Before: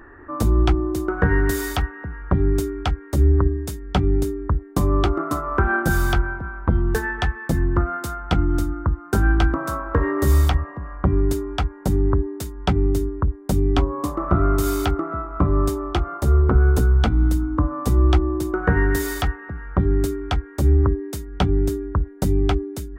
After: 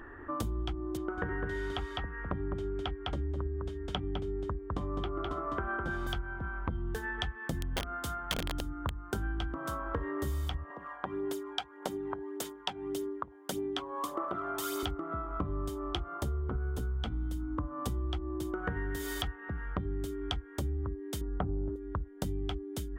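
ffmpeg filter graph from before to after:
ffmpeg -i in.wav -filter_complex "[0:a]asettb=1/sr,asplit=3[link_01][link_02][link_03];[link_01]atrim=end=0.974[link_04];[link_02]atrim=start=0.97:end=6.07,asetpts=PTS-STARTPTS,afade=type=in:duration=0.004:curve=qsin,afade=type=out:start_time=5.096:duration=0.004:curve=qsin,lowpass=7100,bass=frequency=250:gain=-4,treble=frequency=4000:gain=-13,aecho=1:1:206:0.668,atrim=end_sample=224910[link_05];[link_03]atrim=start=6.066[link_06];[link_04][link_05]acrossfade=duration=0.004:curve1=hsin:curve2=qsin[link_07];[link_07][link_06]acrossfade=duration=0.004:curve1=qsin:curve2=hsin,asettb=1/sr,asplit=3[link_08][link_09][link_10];[link_08]atrim=end=7.584[link_11];[link_09]atrim=start=7.58:end=9.11,asetpts=PTS-STARTPTS,afade=type=in:duration=0.004:curve=qsin,afade=type=out:start_time=1.526:duration=0.004:curve=qsin,aeval=exprs='(mod(3.76*val(0)+1,2)-1)/3.76':channel_layout=same,bandreject=frequency=50:width_type=h:width=6,bandreject=frequency=100:width_type=h:width=6,bandreject=frequency=150:width_type=h:width=6,bandreject=frequency=200:width_type=h:width=6,bandreject=frequency=250:width_type=h:width=6,bandreject=frequency=300:width_type=h:width=6,bandreject=frequency=350:width_type=h:width=6,bandreject=frequency=400:width_type=h:width=6[link_12];[link_10]atrim=start=9.106[link_13];[link_11][link_12]acrossfade=duration=0.004:curve1=hsin:curve2=qsin[link_14];[link_14][link_13]acrossfade=duration=0.004:curve1=qsin:curve2=hsin,asettb=1/sr,asplit=3[link_15][link_16][link_17];[link_15]atrim=end=10.704[link_18];[link_16]atrim=start=10.7:end=14.83,asetpts=PTS-STARTPTS,afade=type=in:duration=0.004:curve=qsin,afade=type=out:start_time=4.126:duration=0.004:curve=qsin,highpass=450,aphaser=in_gain=1:out_gain=1:delay=1.3:decay=0.45:speed=1.7:type=sinusoidal[link_19];[link_17]atrim=start=14.826[link_20];[link_18][link_19]acrossfade=duration=0.004:curve1=hsin:curve2=qsin[link_21];[link_21][link_20]acrossfade=duration=0.004:curve1=qsin:curve2=hsin,asettb=1/sr,asplit=3[link_22][link_23][link_24];[link_22]atrim=end=21.214[link_25];[link_23]atrim=start=21.21:end=21.76,asetpts=PTS-STARTPTS,afade=type=in:duration=0.004:curve=qsin,afade=type=out:start_time=0.546:duration=0.004:curve=qsin,lowpass=frequency=1300:width=0.5412,lowpass=frequency=1300:width=1.3066,acontrast=73[link_26];[link_24]atrim=start=21.756[link_27];[link_25][link_26]acrossfade=duration=0.004:curve1=hsin:curve2=qsin[link_28];[link_28][link_27]acrossfade=duration=0.004:curve1=qsin:curve2=hsin,equalizer=frequency=3200:width_type=o:width=0.25:gain=11,acompressor=threshold=-29dB:ratio=6,volume=-3.5dB" out.wav

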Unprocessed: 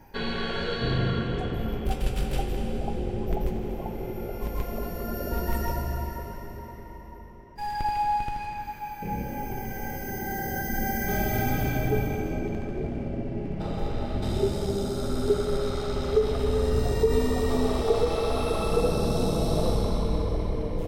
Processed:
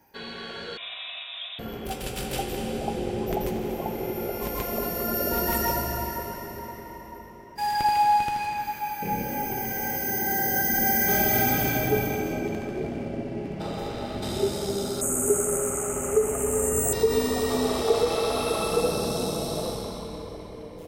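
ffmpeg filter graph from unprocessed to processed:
ffmpeg -i in.wav -filter_complex "[0:a]asettb=1/sr,asplit=3[link_01][link_02][link_03];[link_01]atrim=end=0.774[link_04];[link_02]atrim=start=0.77:end=1.59,asetpts=PTS-STARTPTS,afade=type=in:duration=0.004:curve=qsin,afade=type=out:start_time=0.816:duration=0.004:curve=qsin,highpass=500,lowpass=frequency=3400:width_type=q:width=0.5098,lowpass=frequency=3400:width_type=q:width=0.6013,lowpass=frequency=3400:width_type=q:width=0.9,lowpass=frequency=3400:width_type=q:width=2.563,afreqshift=-4000[link_05];[link_03]atrim=start=1.586[link_06];[link_04][link_05]acrossfade=duration=0.004:curve1=hsin:curve2=qsin[link_07];[link_07][link_06]acrossfade=duration=0.004:curve1=qsin:curve2=hsin,asettb=1/sr,asplit=3[link_08][link_09][link_10];[link_08]atrim=end=15.014[link_11];[link_09]atrim=start=15.01:end=16.93,asetpts=PTS-STARTPTS,afade=type=in:duration=0.004:curve=qsin,afade=type=out:start_time=1.916:duration=0.004:curve=qsin,asuperstop=centerf=4400:order=12:qfactor=1.2,highshelf=frequency=5500:width_type=q:width=3:gain=10.5[link_12];[link_10]atrim=start=16.926[link_13];[link_11][link_12]acrossfade=duration=0.004:curve1=hsin:curve2=qsin[link_14];[link_14][link_13]acrossfade=duration=0.004:curve1=qsin:curve2=hsin,highpass=frequency=230:poles=1,highshelf=frequency=4500:gain=8,dynaudnorm=framelen=320:gausssize=13:maxgain=13dB,volume=-7dB" out.wav

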